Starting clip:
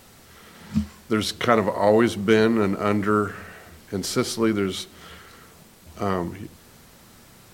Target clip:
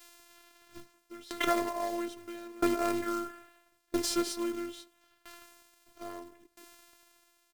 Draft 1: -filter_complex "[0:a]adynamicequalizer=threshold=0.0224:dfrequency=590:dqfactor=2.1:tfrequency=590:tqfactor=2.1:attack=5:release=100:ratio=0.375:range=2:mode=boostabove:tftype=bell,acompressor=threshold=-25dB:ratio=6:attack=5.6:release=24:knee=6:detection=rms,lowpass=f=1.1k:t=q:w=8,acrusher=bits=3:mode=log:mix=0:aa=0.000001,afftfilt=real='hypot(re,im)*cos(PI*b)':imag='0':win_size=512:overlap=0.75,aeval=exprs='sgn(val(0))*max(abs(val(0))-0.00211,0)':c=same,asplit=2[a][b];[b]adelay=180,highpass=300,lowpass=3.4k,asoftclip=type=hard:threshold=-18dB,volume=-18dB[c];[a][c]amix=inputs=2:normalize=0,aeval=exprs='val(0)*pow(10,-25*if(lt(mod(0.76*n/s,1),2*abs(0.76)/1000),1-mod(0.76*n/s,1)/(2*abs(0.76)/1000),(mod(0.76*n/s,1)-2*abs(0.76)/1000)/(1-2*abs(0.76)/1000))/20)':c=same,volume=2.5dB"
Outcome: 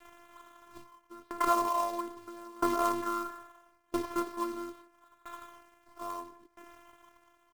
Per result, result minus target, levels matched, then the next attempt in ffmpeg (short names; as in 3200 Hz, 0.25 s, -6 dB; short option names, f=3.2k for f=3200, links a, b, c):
1000 Hz band +5.5 dB; compressor: peak gain reduction +5.5 dB
-filter_complex "[0:a]adynamicequalizer=threshold=0.0224:dfrequency=590:dqfactor=2.1:tfrequency=590:tqfactor=2.1:attack=5:release=100:ratio=0.375:range=2:mode=boostabove:tftype=bell,acompressor=threshold=-25dB:ratio=6:attack=5.6:release=24:knee=6:detection=rms,acrusher=bits=3:mode=log:mix=0:aa=0.000001,afftfilt=real='hypot(re,im)*cos(PI*b)':imag='0':win_size=512:overlap=0.75,aeval=exprs='sgn(val(0))*max(abs(val(0))-0.00211,0)':c=same,asplit=2[a][b];[b]adelay=180,highpass=300,lowpass=3.4k,asoftclip=type=hard:threshold=-18dB,volume=-18dB[c];[a][c]amix=inputs=2:normalize=0,aeval=exprs='val(0)*pow(10,-25*if(lt(mod(0.76*n/s,1),2*abs(0.76)/1000),1-mod(0.76*n/s,1)/(2*abs(0.76)/1000),(mod(0.76*n/s,1)-2*abs(0.76)/1000)/(1-2*abs(0.76)/1000))/20)':c=same,volume=2.5dB"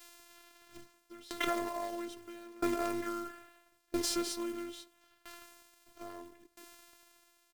compressor: peak gain reduction +5.5 dB
-filter_complex "[0:a]adynamicequalizer=threshold=0.0224:dfrequency=590:dqfactor=2.1:tfrequency=590:tqfactor=2.1:attack=5:release=100:ratio=0.375:range=2:mode=boostabove:tftype=bell,acompressor=threshold=-18.5dB:ratio=6:attack=5.6:release=24:knee=6:detection=rms,acrusher=bits=3:mode=log:mix=0:aa=0.000001,afftfilt=real='hypot(re,im)*cos(PI*b)':imag='0':win_size=512:overlap=0.75,aeval=exprs='sgn(val(0))*max(abs(val(0))-0.00211,0)':c=same,asplit=2[a][b];[b]adelay=180,highpass=300,lowpass=3.4k,asoftclip=type=hard:threshold=-18dB,volume=-18dB[c];[a][c]amix=inputs=2:normalize=0,aeval=exprs='val(0)*pow(10,-25*if(lt(mod(0.76*n/s,1),2*abs(0.76)/1000),1-mod(0.76*n/s,1)/(2*abs(0.76)/1000),(mod(0.76*n/s,1)-2*abs(0.76)/1000)/(1-2*abs(0.76)/1000))/20)':c=same,volume=2.5dB"